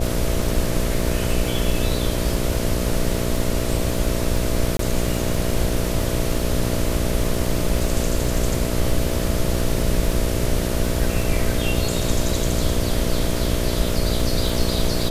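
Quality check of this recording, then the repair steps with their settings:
buzz 60 Hz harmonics 11 -25 dBFS
crackle 21 per s -24 dBFS
4.77–4.79 s: dropout 23 ms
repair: de-click; de-hum 60 Hz, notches 11; interpolate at 4.77 s, 23 ms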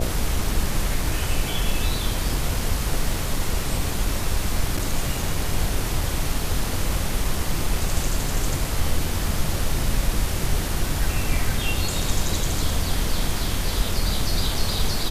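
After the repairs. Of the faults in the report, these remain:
nothing left

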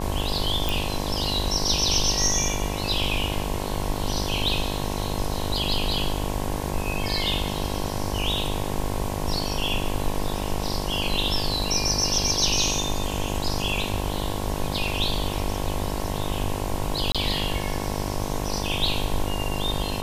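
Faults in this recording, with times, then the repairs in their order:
buzz 50 Hz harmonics 22 -30 dBFS
0.69 s: pop
17.12–17.15 s: dropout 26 ms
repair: de-click; de-hum 50 Hz, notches 22; interpolate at 17.12 s, 26 ms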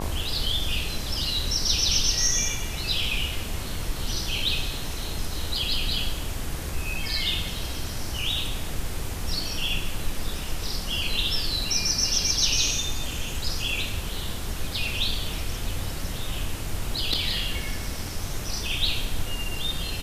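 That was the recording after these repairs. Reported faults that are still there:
nothing left

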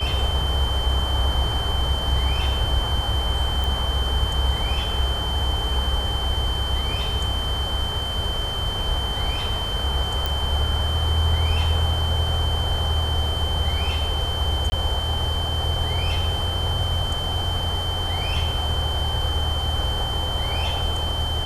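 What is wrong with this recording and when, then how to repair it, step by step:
whine 3.1 kHz -27 dBFS
3.64 s: pop
10.26 s: pop
14.70–14.72 s: dropout 20 ms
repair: de-click; band-stop 3.1 kHz, Q 30; interpolate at 14.70 s, 20 ms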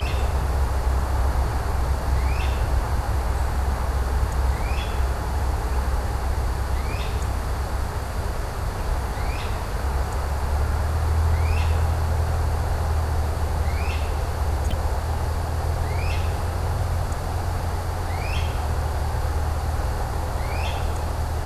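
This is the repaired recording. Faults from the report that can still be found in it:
nothing left

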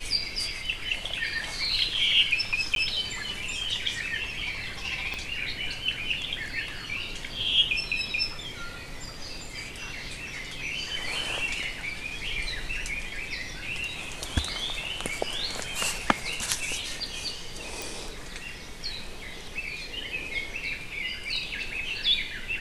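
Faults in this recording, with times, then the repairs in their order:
2.75–2.76 s: dropout 12 ms
5.14 s: pop -19 dBFS
17.82 s: pop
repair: de-click; interpolate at 2.75 s, 12 ms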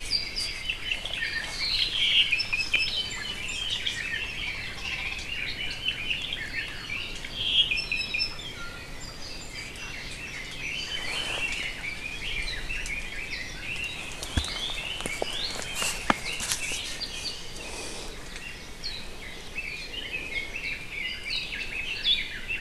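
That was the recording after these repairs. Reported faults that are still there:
5.14 s: pop

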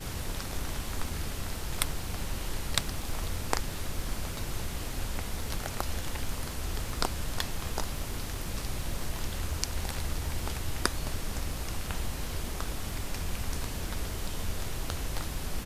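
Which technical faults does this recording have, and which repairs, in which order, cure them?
crackle 29 per s -39 dBFS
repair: de-click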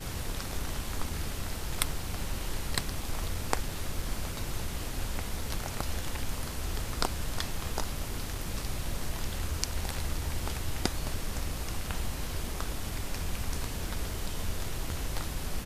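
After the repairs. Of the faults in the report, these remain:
nothing left

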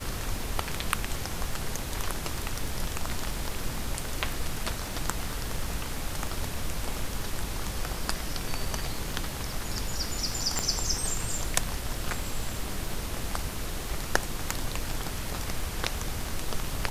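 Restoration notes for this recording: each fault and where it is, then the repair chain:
crackle 50 per s -37 dBFS
10.59 s: pop -11 dBFS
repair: de-click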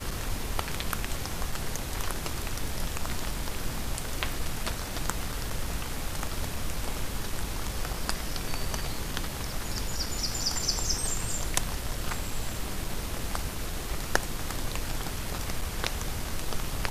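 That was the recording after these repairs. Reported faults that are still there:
nothing left

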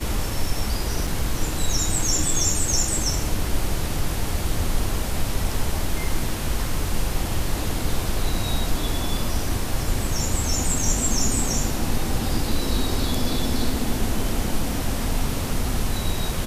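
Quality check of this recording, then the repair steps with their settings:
1.07 s: dropout 4.1 ms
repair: interpolate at 1.07 s, 4.1 ms

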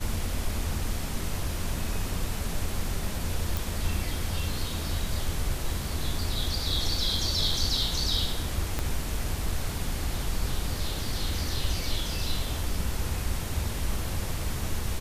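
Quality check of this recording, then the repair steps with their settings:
3.57 s: pop
8.79 s: pop -13 dBFS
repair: de-click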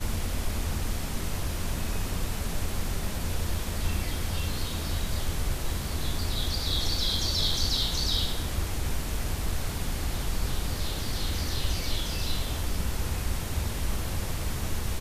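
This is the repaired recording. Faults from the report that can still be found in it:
8.79 s: pop

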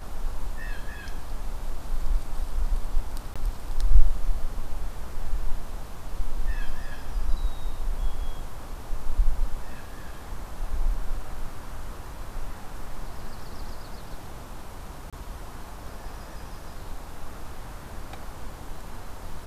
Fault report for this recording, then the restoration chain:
3.34–3.36 s: dropout 16 ms
15.10–15.13 s: dropout 26 ms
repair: interpolate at 3.34 s, 16 ms; interpolate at 15.10 s, 26 ms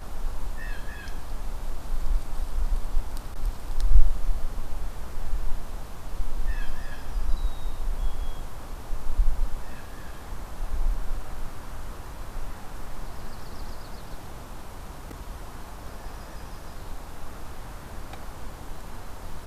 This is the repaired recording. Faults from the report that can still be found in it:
nothing left

